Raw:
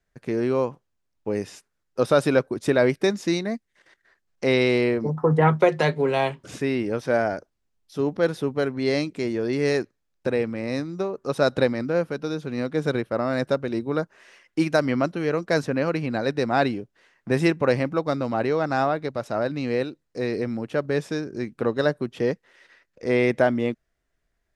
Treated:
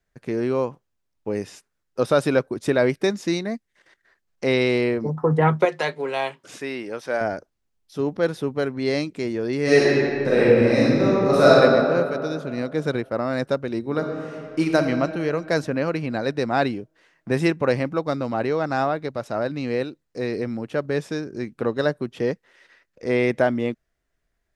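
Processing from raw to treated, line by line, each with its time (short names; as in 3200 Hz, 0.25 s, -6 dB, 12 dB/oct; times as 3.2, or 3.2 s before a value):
5.65–7.21 HPF 610 Hz 6 dB/oct
9.63–11.52 reverb throw, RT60 2.4 s, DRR -9.5 dB
13.79–14.76 reverb throw, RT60 2.7 s, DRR 2.5 dB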